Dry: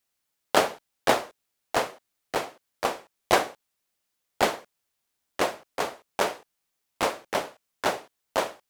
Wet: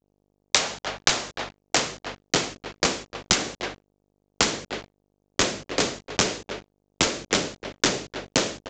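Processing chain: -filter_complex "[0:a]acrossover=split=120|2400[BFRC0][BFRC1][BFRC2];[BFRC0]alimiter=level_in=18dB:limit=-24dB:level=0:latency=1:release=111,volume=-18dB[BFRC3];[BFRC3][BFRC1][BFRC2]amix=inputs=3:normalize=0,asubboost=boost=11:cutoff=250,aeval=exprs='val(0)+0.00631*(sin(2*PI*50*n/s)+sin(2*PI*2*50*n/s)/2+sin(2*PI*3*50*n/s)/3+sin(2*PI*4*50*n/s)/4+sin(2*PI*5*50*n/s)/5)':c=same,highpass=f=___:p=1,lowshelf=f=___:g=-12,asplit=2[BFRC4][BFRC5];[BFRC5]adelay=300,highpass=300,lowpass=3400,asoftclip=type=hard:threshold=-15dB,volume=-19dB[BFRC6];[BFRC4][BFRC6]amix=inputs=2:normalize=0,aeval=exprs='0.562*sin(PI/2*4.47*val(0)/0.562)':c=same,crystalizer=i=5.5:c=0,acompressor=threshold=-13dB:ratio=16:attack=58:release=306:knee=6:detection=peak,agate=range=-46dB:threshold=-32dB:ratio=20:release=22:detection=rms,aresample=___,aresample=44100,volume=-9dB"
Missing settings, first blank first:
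50, 88, 16000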